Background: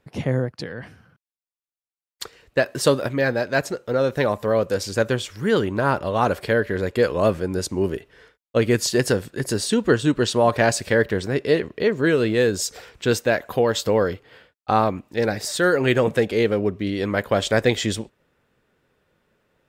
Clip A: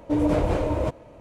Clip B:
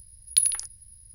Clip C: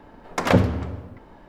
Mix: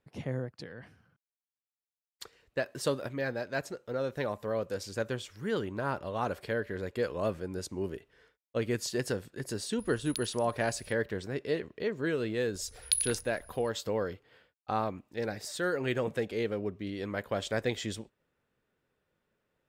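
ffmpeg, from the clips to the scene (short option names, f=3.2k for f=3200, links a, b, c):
-filter_complex "[2:a]asplit=2[a][b];[0:a]volume=-12.5dB[c];[a]acompressor=threshold=-43dB:ratio=3:attack=8.3:release=505:knee=1:detection=peak[d];[b]highshelf=f=6.6k:g=-8.5[e];[d]atrim=end=1.14,asetpts=PTS-STARTPTS,volume=-2.5dB,afade=t=in:d=0.004:c=hsin,afade=t=out:st=1.136:d=0.004:c=hsin,adelay=9790[f];[e]atrim=end=1.14,asetpts=PTS-STARTPTS,volume=-1.5dB,afade=t=in:d=0.004:c=hsin,afade=t=out:st=1.136:d=0.004:c=hsin,adelay=12550[g];[c][f][g]amix=inputs=3:normalize=0"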